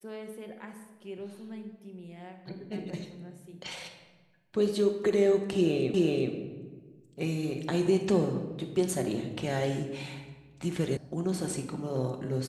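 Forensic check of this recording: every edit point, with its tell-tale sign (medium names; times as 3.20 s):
5.94 s: repeat of the last 0.38 s
10.97 s: sound stops dead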